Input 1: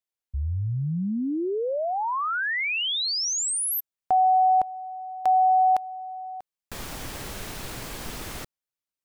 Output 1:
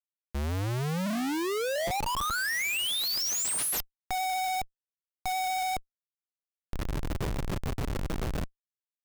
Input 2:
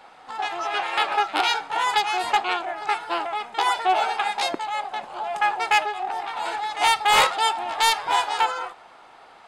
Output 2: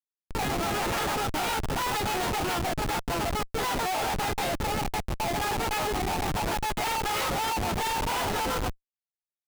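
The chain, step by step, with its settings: resonator 180 Hz, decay 0.87 s, harmonics odd, mix 60%; in parallel at -10 dB: one-sided clip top -29.5 dBFS; on the sum: rotary speaker horn 7 Hz; Schmitt trigger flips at -37.5 dBFS; gain +5.5 dB

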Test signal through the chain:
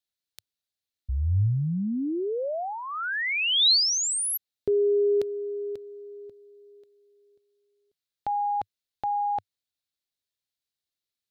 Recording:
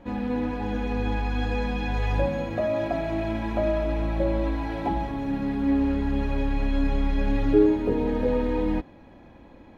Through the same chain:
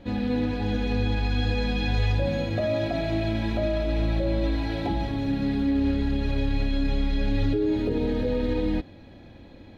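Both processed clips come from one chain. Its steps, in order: limiter -18.5 dBFS; fifteen-band EQ 100 Hz +7 dB, 1000 Hz -8 dB, 4000 Hz +10 dB; gain +1.5 dB

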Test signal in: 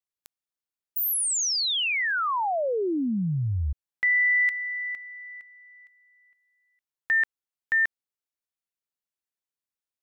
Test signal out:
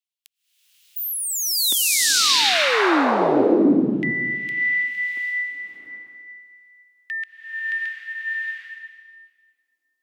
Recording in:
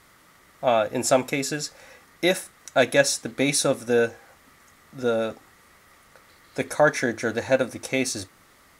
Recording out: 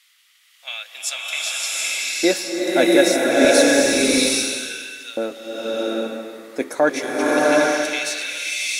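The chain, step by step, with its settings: LFO high-pass square 0.29 Hz 300–2900 Hz; bloom reverb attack 0.77 s, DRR -6 dB; gain -1 dB

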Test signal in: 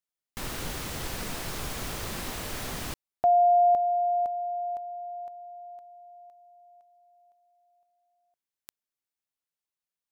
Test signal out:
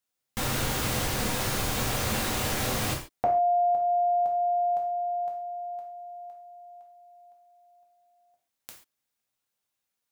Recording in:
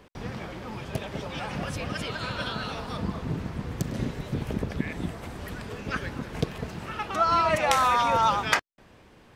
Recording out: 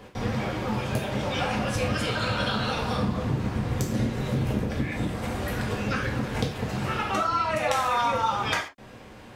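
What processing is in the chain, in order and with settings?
compressor 6:1, threshold -31 dBFS; non-linear reverb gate 0.16 s falling, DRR -1.5 dB; gain +4.5 dB

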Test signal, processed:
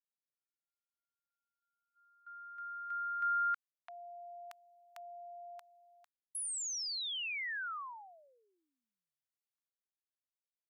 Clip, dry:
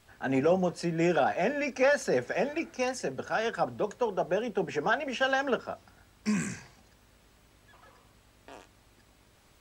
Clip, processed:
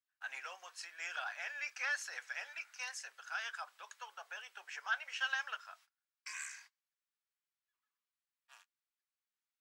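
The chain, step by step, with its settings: gate -48 dBFS, range -28 dB; HPF 1200 Hz 24 dB/oct; gain -5.5 dB

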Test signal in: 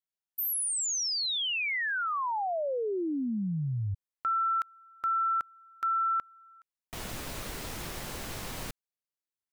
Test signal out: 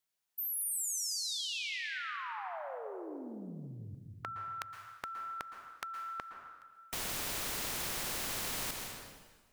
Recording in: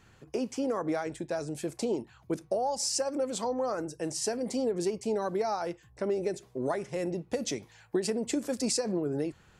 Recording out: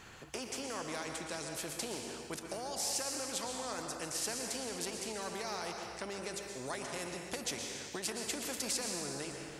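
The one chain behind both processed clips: low shelf 460 Hz -4.5 dB; plate-style reverb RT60 1.3 s, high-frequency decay 0.95×, pre-delay 0.105 s, DRR 6.5 dB; spectral compressor 2:1; gain -2.5 dB

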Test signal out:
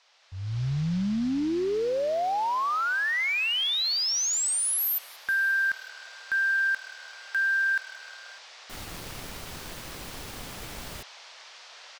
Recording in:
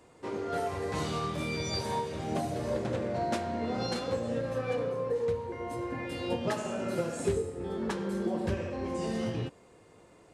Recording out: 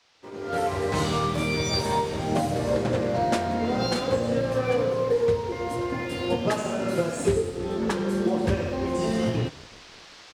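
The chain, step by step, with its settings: on a send: frequency-shifting echo 0.181 s, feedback 58%, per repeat -38 Hz, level -21 dB; on the sum: crossover distortion -58 dBFS; band noise 550–5500 Hz -57 dBFS; AGC gain up to 16.5 dB; gain -8 dB

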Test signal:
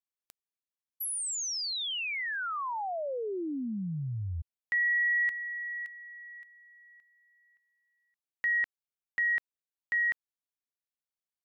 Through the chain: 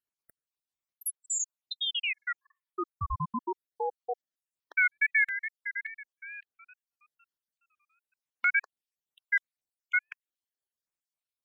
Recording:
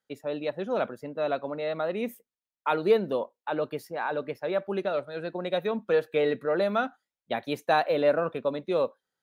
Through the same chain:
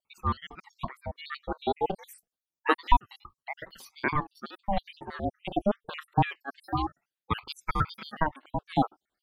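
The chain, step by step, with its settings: random spectral dropouts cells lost 73%; wow and flutter 110 cents; ring modulator with a swept carrier 430 Hz, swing 55%, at 0.27 Hz; gain +7.5 dB

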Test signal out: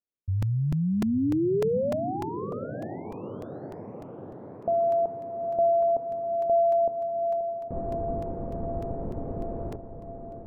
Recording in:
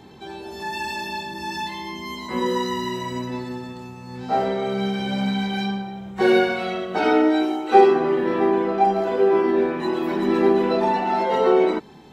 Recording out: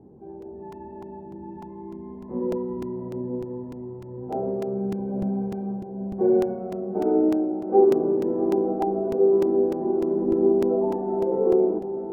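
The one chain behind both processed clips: ladder low-pass 690 Hz, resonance 20%; on a send: diffused feedback echo 0.843 s, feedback 64%, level -10 dB; on the sum: crackling interface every 0.30 s, samples 128, repeat, from 0.42; gain +1.5 dB

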